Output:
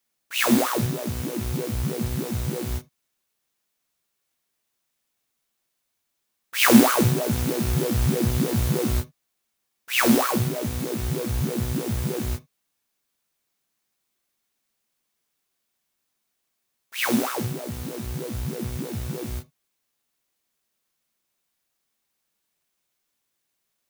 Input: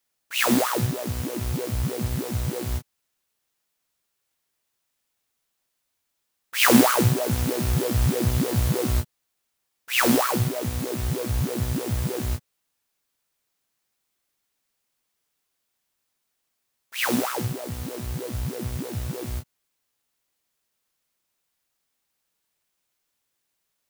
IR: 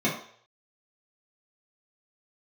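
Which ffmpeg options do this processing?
-filter_complex "[0:a]asplit=2[a][b];[1:a]atrim=start_sample=2205,atrim=end_sample=3528,highshelf=f=5k:g=9.5[c];[b][c]afir=irnorm=-1:irlink=0,volume=-24.5dB[d];[a][d]amix=inputs=2:normalize=0,volume=-1dB"

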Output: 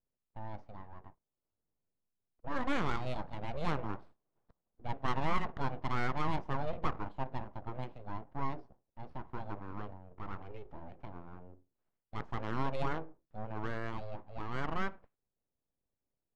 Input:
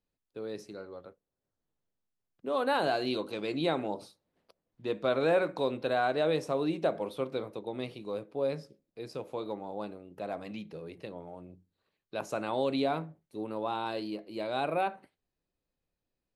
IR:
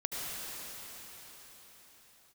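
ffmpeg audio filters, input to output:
-af "aeval=exprs='abs(val(0))':c=same,adynamicsmooth=sensitivity=2:basefreq=1.3k,volume=-1dB"

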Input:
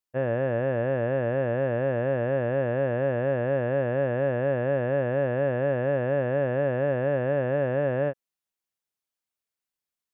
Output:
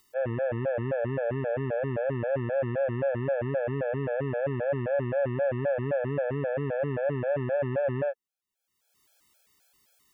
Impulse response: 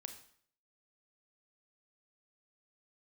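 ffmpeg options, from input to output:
-af "acompressor=mode=upward:threshold=-42dB:ratio=2.5,afftfilt=real='re*gt(sin(2*PI*3.8*pts/sr)*(1-2*mod(floor(b*sr/1024/440),2)),0)':imag='im*gt(sin(2*PI*3.8*pts/sr)*(1-2*mod(floor(b*sr/1024/440),2)),0)':win_size=1024:overlap=0.75"

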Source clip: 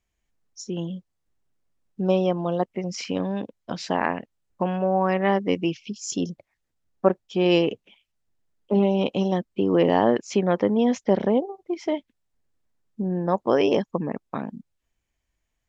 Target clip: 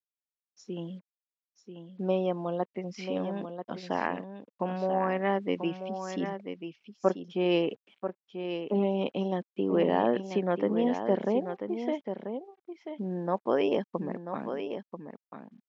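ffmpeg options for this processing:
-af "acrusher=bits=8:mix=0:aa=0.5,highpass=170,lowpass=3.4k,aecho=1:1:988:0.376,volume=-6dB"

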